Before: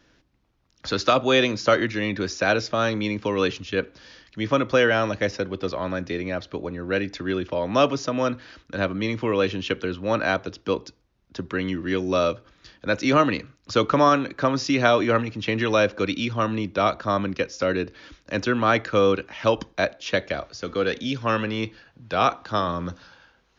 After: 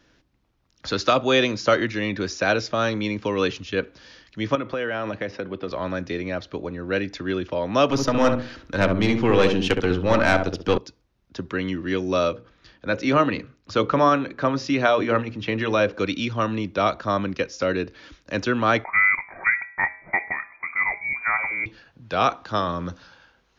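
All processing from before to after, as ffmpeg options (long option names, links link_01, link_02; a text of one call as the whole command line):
ffmpeg -i in.wav -filter_complex "[0:a]asettb=1/sr,asplit=3[link_01][link_02][link_03];[link_01]atrim=end=4.554[link_04];[link_02]atrim=start=4.55:end=5.71,asetpts=PTS-STARTPTS,afade=type=in:duration=0.004:curve=qsin,afade=type=out:start_time=1.156:duration=0.004:curve=qsin,highpass=110,lowpass=3200,acompressor=threshold=-23dB:ratio=6:attack=3.2:release=140:knee=1:detection=peak[link_05];[link_03]atrim=start=5.706[link_06];[link_04][link_05]acrossfade=duration=0.004:curve1=hsin:curve2=qsin[link_07];[link_07][link_06]acrossfade=duration=0.004:curve1=qsin:curve2=hsin,asettb=1/sr,asplit=3[link_08][link_09][link_10];[link_08]atrim=end=7.894[link_11];[link_09]atrim=start=7.89:end=10.78,asetpts=PTS-STARTPTS,afade=type=in:duration=0.004:curve=qsin,afade=type=out:start_time=2.886:duration=0.004:curve=qsin,acontrast=87,aeval=exprs='(tanh(2.82*val(0)+0.6)-tanh(0.6))/2.82':channel_layout=same,asplit=2[link_12][link_13];[link_13]adelay=66,lowpass=frequency=860:poles=1,volume=-3.5dB,asplit=2[link_14][link_15];[link_15]adelay=66,lowpass=frequency=860:poles=1,volume=0.35,asplit=2[link_16][link_17];[link_17]adelay=66,lowpass=frequency=860:poles=1,volume=0.35,asplit=2[link_18][link_19];[link_19]adelay=66,lowpass=frequency=860:poles=1,volume=0.35,asplit=2[link_20][link_21];[link_21]adelay=66,lowpass=frequency=860:poles=1,volume=0.35[link_22];[link_12][link_14][link_16][link_18][link_20][link_22]amix=inputs=6:normalize=0,atrim=end_sample=127449[link_23];[link_10]atrim=start=10.776[link_24];[link_11][link_23]acrossfade=duration=0.004:curve1=hsin:curve2=qsin[link_25];[link_25][link_24]acrossfade=duration=0.004:curve1=qsin:curve2=hsin,asettb=1/sr,asplit=3[link_26][link_27][link_28];[link_26]atrim=end=12.294[link_29];[link_27]atrim=start=12.29:end=15.94,asetpts=PTS-STARTPTS,afade=type=in:duration=0.004:curve=qsin,afade=type=out:start_time=3.646:duration=0.004:curve=qsin,highshelf=frequency=5900:gain=-11.5,bandreject=frequency=60:width_type=h:width=6,bandreject=frequency=120:width_type=h:width=6,bandreject=frequency=180:width_type=h:width=6,bandreject=frequency=240:width_type=h:width=6,bandreject=frequency=300:width_type=h:width=6,bandreject=frequency=360:width_type=h:width=6,bandreject=frequency=420:width_type=h:width=6,bandreject=frequency=480:width_type=h:width=6,bandreject=frequency=540:width_type=h:width=6[link_30];[link_28]atrim=start=15.936[link_31];[link_29][link_30]acrossfade=duration=0.004:curve1=hsin:curve2=qsin[link_32];[link_32][link_31]acrossfade=duration=0.004:curve1=qsin:curve2=hsin,asettb=1/sr,asplit=3[link_33][link_34][link_35];[link_33]atrim=end=18.844[link_36];[link_34]atrim=start=18.84:end=21.66,asetpts=PTS-STARTPTS,afade=type=in:duration=0.004:curve=qsin,afade=type=out:start_time=2.816:duration=0.004:curve=qsin,bandreject=frequency=186.6:width_type=h:width=4,bandreject=frequency=373.2:width_type=h:width=4,bandreject=frequency=559.8:width_type=h:width=4,bandreject=frequency=746.4:width_type=h:width=4,bandreject=frequency=933:width_type=h:width=4,bandreject=frequency=1119.6:width_type=h:width=4,bandreject=frequency=1306.2:width_type=h:width=4,bandreject=frequency=1492.8:width_type=h:width=4,bandreject=frequency=1679.4:width_type=h:width=4,bandreject=frequency=1866:width_type=h:width=4,bandreject=frequency=2052.6:width_type=h:width=4,bandreject=frequency=2239.2:width_type=h:width=4,bandreject=frequency=2425.8:width_type=h:width=4,bandreject=frequency=2612.4:width_type=h:width=4,bandreject=frequency=2799:width_type=h:width=4,bandreject=frequency=2985.6:width_type=h:width=4,bandreject=frequency=3172.2:width_type=h:width=4,bandreject=frequency=3358.8:width_type=h:width=4,bandreject=frequency=3545.4:width_type=h:width=4,bandreject=frequency=3732:width_type=h:width=4,bandreject=frequency=3918.6:width_type=h:width=4,bandreject=frequency=4105.2:width_type=h:width=4,bandreject=frequency=4291.8:width_type=h:width=4,bandreject=frequency=4478.4:width_type=h:width=4,bandreject=frequency=4665:width_type=h:width=4,bandreject=frequency=4851.6:width_type=h:width=4,bandreject=frequency=5038.2:width_type=h:width=4,bandreject=frequency=5224.8:width_type=h:width=4,bandreject=frequency=5411.4:width_type=h:width=4,bandreject=frequency=5598:width_type=h:width=4,bandreject=frequency=5784.6:width_type=h:width=4,bandreject=frequency=5971.2:width_type=h:width=4,lowpass=frequency=2100:width_type=q:width=0.5098,lowpass=frequency=2100:width_type=q:width=0.6013,lowpass=frequency=2100:width_type=q:width=0.9,lowpass=frequency=2100:width_type=q:width=2.563,afreqshift=-2500[link_37];[link_35]atrim=start=21.656[link_38];[link_36][link_37]acrossfade=duration=0.004:curve1=hsin:curve2=qsin[link_39];[link_39][link_38]acrossfade=duration=0.004:curve1=qsin:curve2=hsin" out.wav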